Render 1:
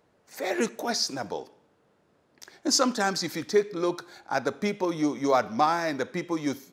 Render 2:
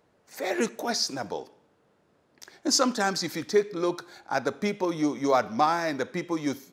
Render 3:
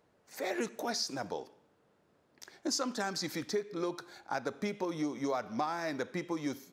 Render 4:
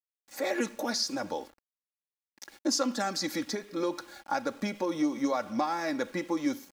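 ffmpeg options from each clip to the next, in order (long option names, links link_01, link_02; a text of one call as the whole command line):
ffmpeg -i in.wav -af anull out.wav
ffmpeg -i in.wav -af "acompressor=threshold=-27dB:ratio=4,volume=-4dB" out.wav
ffmpeg -i in.wav -af "aeval=exprs='val(0)*gte(abs(val(0)),0.00178)':channel_layout=same,aecho=1:1:3.6:0.61,volume=3dB" out.wav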